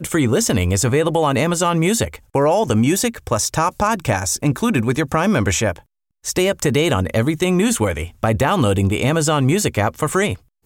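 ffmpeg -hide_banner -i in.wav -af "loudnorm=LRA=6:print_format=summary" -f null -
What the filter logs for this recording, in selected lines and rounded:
Input Integrated:    -18.1 LUFS
Input True Peak:      -3.7 dBTP
Input LRA:             1.6 LU
Input Threshold:     -28.3 LUFS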